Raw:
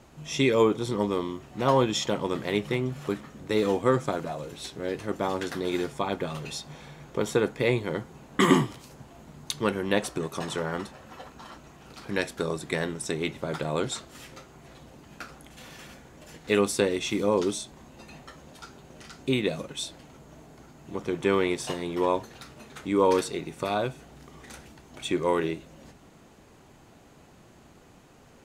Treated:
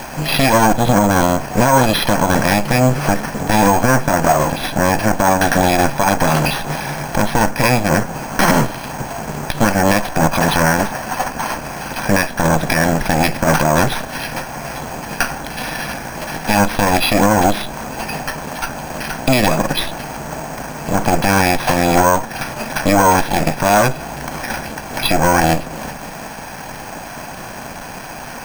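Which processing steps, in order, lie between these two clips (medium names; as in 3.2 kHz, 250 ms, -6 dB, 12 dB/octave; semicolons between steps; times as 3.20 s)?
comb filter that takes the minimum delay 1.2 ms; peaking EQ 78 Hz -12.5 dB 2.2 oct; compression 4:1, threshold -34 dBFS, peak gain reduction 14 dB; tone controls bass +2 dB, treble -15 dB; careless resampling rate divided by 6×, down filtered, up hold; loudness maximiser +28 dB; tape noise reduction on one side only encoder only; trim -1.5 dB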